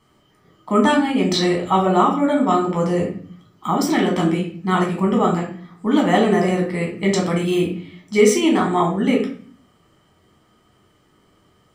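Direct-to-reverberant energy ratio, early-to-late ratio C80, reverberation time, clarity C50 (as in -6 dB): -2.0 dB, 11.0 dB, 0.45 s, 6.5 dB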